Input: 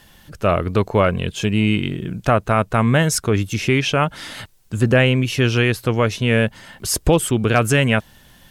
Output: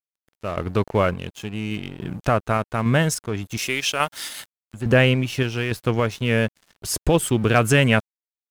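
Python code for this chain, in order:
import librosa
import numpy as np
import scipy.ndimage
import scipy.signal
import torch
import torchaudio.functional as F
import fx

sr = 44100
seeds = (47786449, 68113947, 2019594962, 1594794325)

y = fx.riaa(x, sr, side='recording', at=(3.57, 4.74))
y = fx.tremolo_random(y, sr, seeds[0], hz=3.5, depth_pct=70)
y = np.sign(y) * np.maximum(np.abs(y) - 10.0 ** (-38.5 / 20.0), 0.0)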